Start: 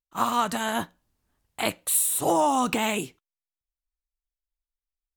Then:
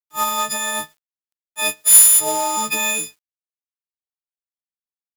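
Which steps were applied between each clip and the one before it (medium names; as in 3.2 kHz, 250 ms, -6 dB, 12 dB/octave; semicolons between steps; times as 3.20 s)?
partials quantised in pitch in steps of 6 st; companded quantiser 4-bit; bass shelf 460 Hz -6.5 dB; trim -1.5 dB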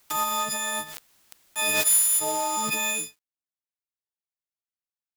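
compression 2:1, threshold -16 dBFS, peak gain reduction 6.5 dB; band-stop 480 Hz, Q 12; swell ahead of each attack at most 21 dB/s; trim -5.5 dB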